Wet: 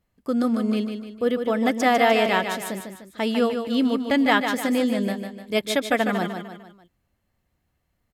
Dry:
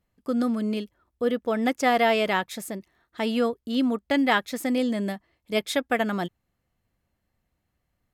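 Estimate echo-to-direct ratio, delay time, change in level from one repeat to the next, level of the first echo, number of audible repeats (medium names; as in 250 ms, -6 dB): -6.0 dB, 150 ms, -7.0 dB, -7.0 dB, 4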